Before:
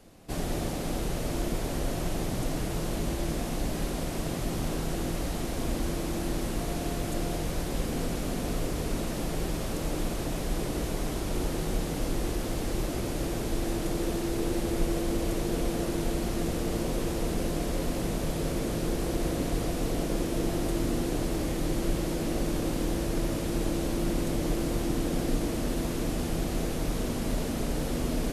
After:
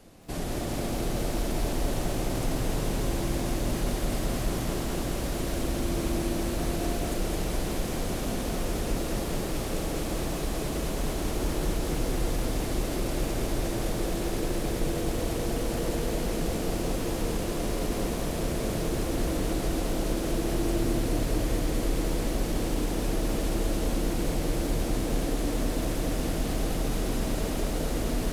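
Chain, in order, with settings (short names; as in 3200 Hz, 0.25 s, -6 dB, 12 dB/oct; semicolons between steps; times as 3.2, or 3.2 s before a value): in parallel at +2.5 dB: limiter -26.5 dBFS, peak gain reduction 11.5 dB; on the sum: lo-fi delay 0.212 s, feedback 80%, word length 8-bit, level -4.5 dB; gain -6 dB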